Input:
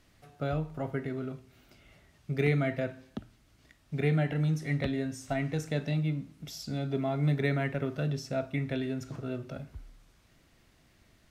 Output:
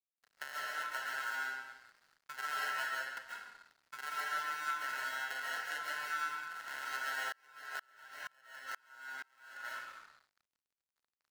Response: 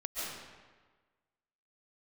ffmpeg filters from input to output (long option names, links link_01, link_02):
-filter_complex "[0:a]aeval=exprs='if(lt(val(0),0),0.251*val(0),val(0))':channel_layout=same,acompressor=threshold=-34dB:ratio=6,acrusher=samples=37:mix=1:aa=0.000001,highpass=frequency=1400:width_type=q:width=4.9[link_01];[1:a]atrim=start_sample=2205[link_02];[link_01][link_02]afir=irnorm=-1:irlink=0,aeval=exprs='sgn(val(0))*max(abs(val(0))-0.00106,0)':channel_layout=same,asettb=1/sr,asplit=3[link_03][link_04][link_05];[link_03]atrim=end=7.324[link_06];[link_04]atrim=start=7.32:end=9.65,asetpts=PTS-STARTPTS,afade=type=in:duration=0.004:curve=qsin,afade=type=out:start_time=2.326:duration=0.004:curve=qsin,aeval=exprs='val(0)*pow(10,-34*if(lt(mod(-2.1*n/s,1),2*abs(-2.1)/1000),1-mod(-2.1*n/s,1)/(2*abs(-2.1)/1000),(mod(-2.1*n/s,1)-2*abs(-2.1)/1000)/(1-2*abs(-2.1)/1000))/20)':channel_layout=same[link_07];[link_05]atrim=start=9.646[link_08];[link_06][link_07]acrossfade=duration=0.004:curve1=hsin:curve2=qsin[link_09];[link_09][link_08]acrossfade=duration=0.004:curve1=qsin:curve2=hsin,volume=1.5dB"